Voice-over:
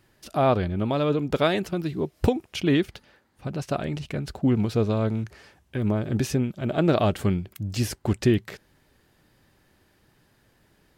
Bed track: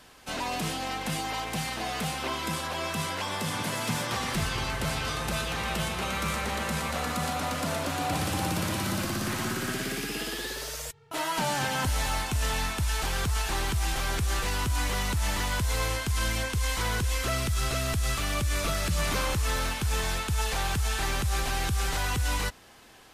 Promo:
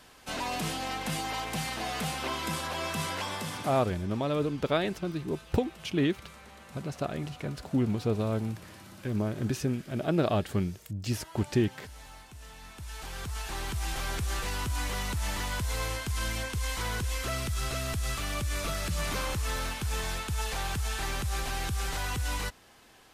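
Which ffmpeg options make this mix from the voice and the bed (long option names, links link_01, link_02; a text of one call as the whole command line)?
ffmpeg -i stem1.wav -i stem2.wav -filter_complex "[0:a]adelay=3300,volume=-5.5dB[link_01];[1:a]volume=14.5dB,afade=type=out:start_time=3.19:duration=0.74:silence=0.11885,afade=type=in:start_time=12.59:duration=1.41:silence=0.158489[link_02];[link_01][link_02]amix=inputs=2:normalize=0" out.wav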